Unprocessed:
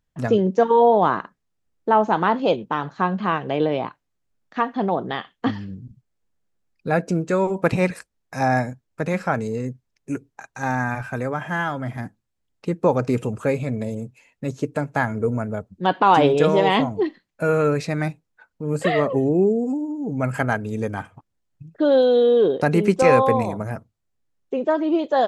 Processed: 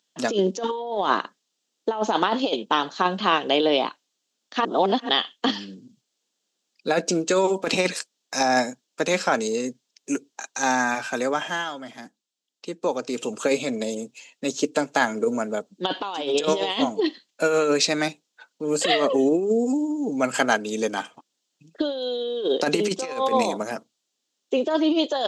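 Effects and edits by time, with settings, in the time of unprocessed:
4.65–5.09 s: reverse
11.38–13.40 s: dip -8.5 dB, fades 0.27 s
whole clip: high-pass 240 Hz 24 dB/octave; high-order bell 4.7 kHz +13.5 dB; compressor with a negative ratio -20 dBFS, ratio -0.5

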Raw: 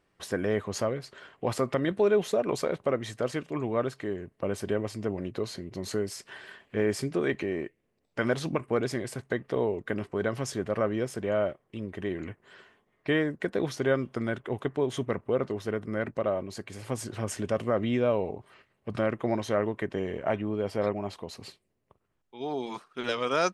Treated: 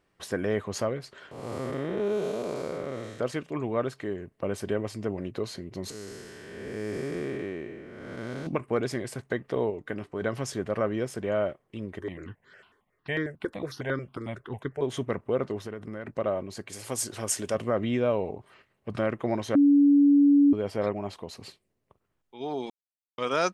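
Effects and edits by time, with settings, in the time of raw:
1.31–3.20 s: spectral blur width 307 ms
5.90–8.47 s: spectral blur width 498 ms
9.70–10.22 s: feedback comb 150 Hz, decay 0.16 s, mix 40%
11.99–14.82 s: stepped phaser 11 Hz 700–2700 Hz
15.61–16.09 s: compression, threshold -32 dBFS
16.69–17.55 s: tone controls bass -6 dB, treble +11 dB
19.55–20.53 s: bleep 285 Hz -15 dBFS
22.70–23.18 s: mute

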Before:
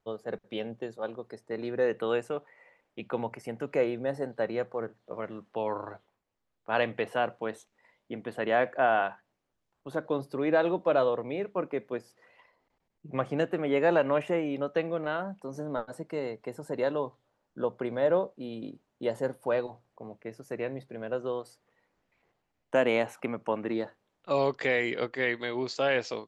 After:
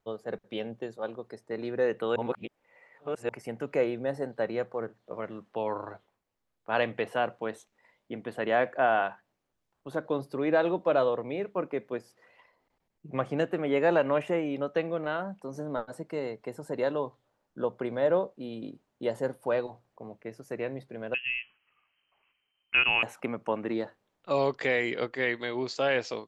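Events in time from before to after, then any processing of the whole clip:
2.16–3.29 s: reverse
21.14–23.03 s: frequency inversion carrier 3.1 kHz

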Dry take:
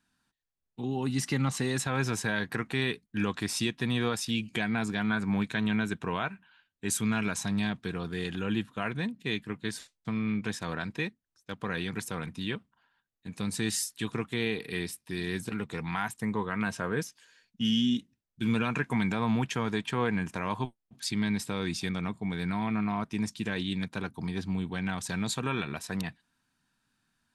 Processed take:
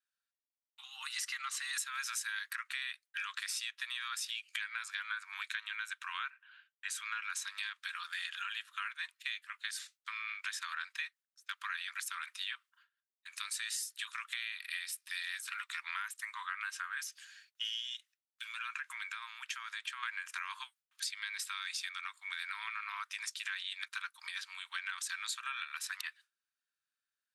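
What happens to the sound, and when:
1.73–2.53 s: treble shelf 5 kHz +10 dB
6.30–7.30 s: low-pass 2.3 kHz 6 dB/octave
17.96–20.03 s: compression 2:1, threshold -41 dBFS
whole clip: gate with hold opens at -54 dBFS; steep high-pass 1.2 kHz 48 dB/octave; compression, threshold -42 dBFS; trim +5.5 dB

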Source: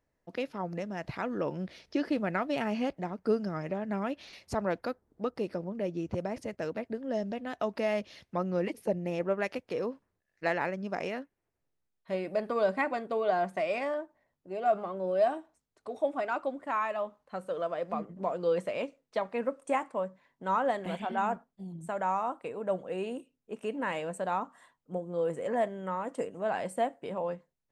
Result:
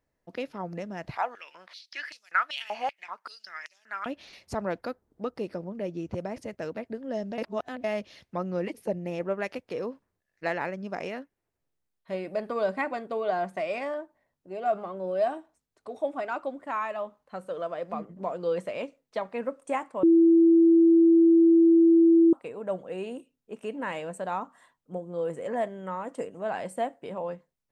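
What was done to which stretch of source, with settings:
1.16–4.06 s: step-sequenced high-pass 5.2 Hz 800–5500 Hz
7.38–7.84 s: reverse
20.03–22.33 s: bleep 332 Hz -14.5 dBFS

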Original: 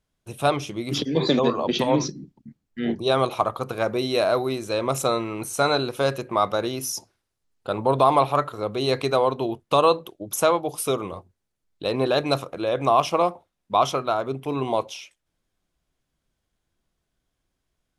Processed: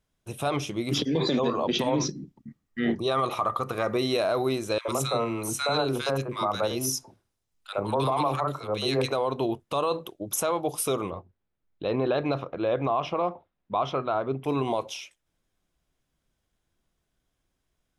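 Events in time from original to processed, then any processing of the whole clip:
2.36–4.13 s: small resonant body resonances 1.2/1.9 kHz, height 10 dB, ringing for 25 ms
4.78–9.12 s: three bands offset in time highs, mids, lows 70/100 ms, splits 430/1500 Hz
11.10–14.44 s: distance through air 280 m
whole clip: band-stop 4.4 kHz, Q 18; peak limiter -16 dBFS

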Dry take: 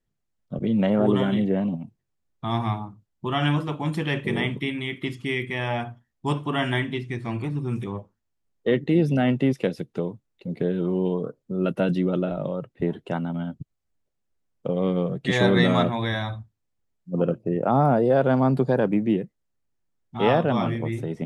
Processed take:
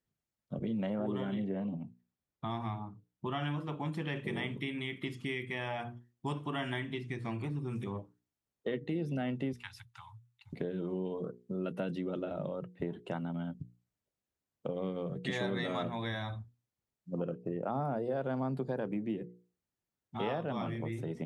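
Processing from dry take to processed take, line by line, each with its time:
0.94–4.16 s: treble shelf 4.4 kHz -6.5 dB
9.53–10.53 s: Chebyshev band-stop 120–860 Hz, order 5
whole clip: high-pass 56 Hz; hum notches 60/120/180/240/300/360/420/480 Hz; compression 3:1, threshold -30 dBFS; trim -4.5 dB

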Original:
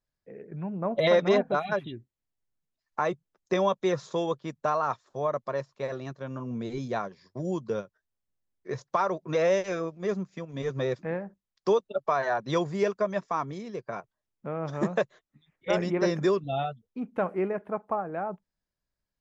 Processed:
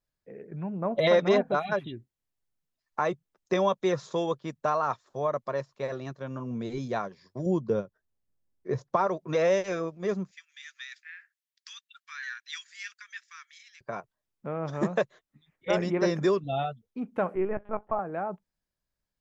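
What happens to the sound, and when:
7.46–9.07 s: tilt shelf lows +5.5 dB
10.31–13.81 s: steep high-pass 1.6 kHz 48 dB/octave
17.35–17.99 s: LPC vocoder at 8 kHz pitch kept

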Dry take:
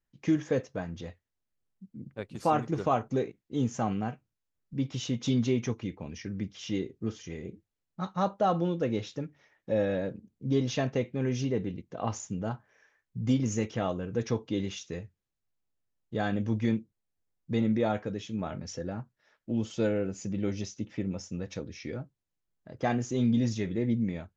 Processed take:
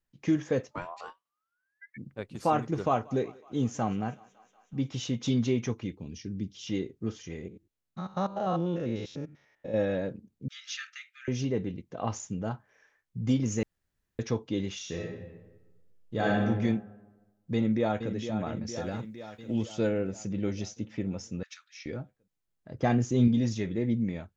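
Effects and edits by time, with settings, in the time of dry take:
0.70–1.96 s: ring modulator 720 Hz -> 2 kHz
2.75–5.03 s: thinning echo 185 ms, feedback 76%, high-pass 430 Hz, level -22 dB
5.92–6.67 s: high-order bell 1.1 kHz -12 dB 2.4 oct
7.48–9.74 s: spectrogram pixelated in time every 100 ms
10.48–11.28 s: brick-wall FIR high-pass 1.2 kHz
13.63–14.19 s: room tone
14.76–16.41 s: reverb throw, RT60 1.2 s, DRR -2.5 dB
17.54–18.13 s: echo throw 460 ms, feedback 65%, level -9 dB
18.76–19.63 s: treble shelf 2.4 kHz +11.5 dB
21.43–21.86 s: elliptic high-pass 1.3 kHz, stop band 60 dB
22.71–23.28 s: bass shelf 270 Hz +7.5 dB

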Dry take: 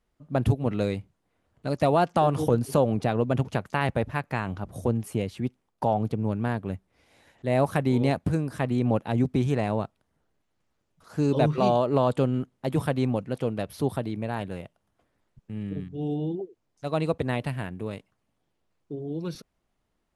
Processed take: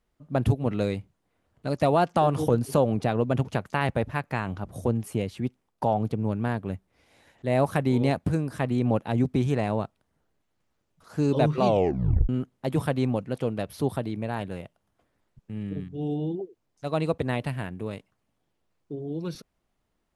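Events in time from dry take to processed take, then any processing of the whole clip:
11.66 s: tape stop 0.63 s

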